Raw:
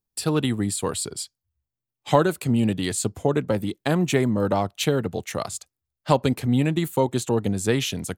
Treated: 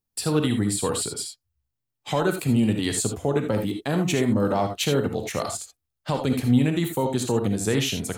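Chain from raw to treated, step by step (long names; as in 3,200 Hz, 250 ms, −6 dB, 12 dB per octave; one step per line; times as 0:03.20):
brickwall limiter −13 dBFS, peak gain reduction 9 dB
reverb whose tail is shaped and stops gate 100 ms rising, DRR 4.5 dB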